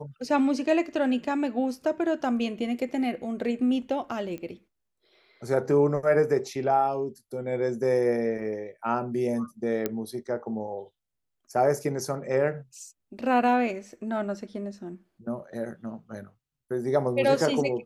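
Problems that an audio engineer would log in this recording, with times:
0:04.38: click −26 dBFS
0:09.86: click −13 dBFS

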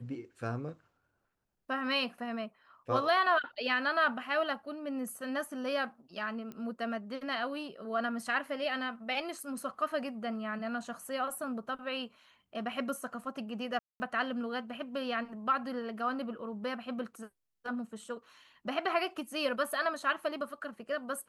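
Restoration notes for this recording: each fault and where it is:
0:06.52: click −30 dBFS
0:13.79–0:14.00: drop-out 210 ms

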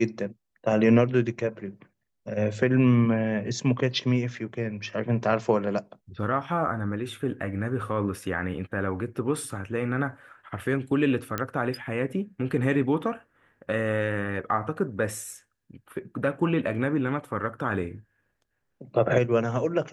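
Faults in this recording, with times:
0:11.38: click −13 dBFS

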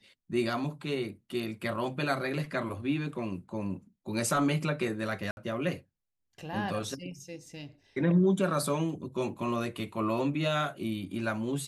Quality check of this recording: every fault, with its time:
0:05.31–0:05.37: drop-out 61 ms

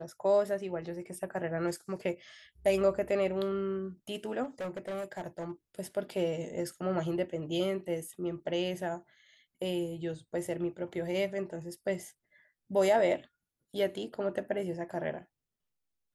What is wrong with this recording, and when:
0:04.43–0:05.52: clipping −33.5 dBFS

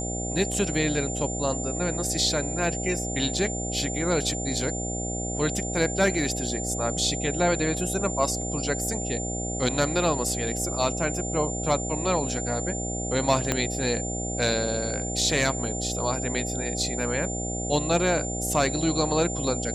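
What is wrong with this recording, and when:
mains buzz 60 Hz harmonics 13 −32 dBFS
whistle 7,200 Hz −32 dBFS
0:13.52: click −8 dBFS

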